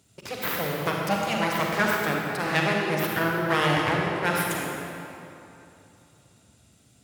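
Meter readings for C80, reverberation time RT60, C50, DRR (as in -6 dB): 0.5 dB, 3.0 s, -1.0 dB, -1.5 dB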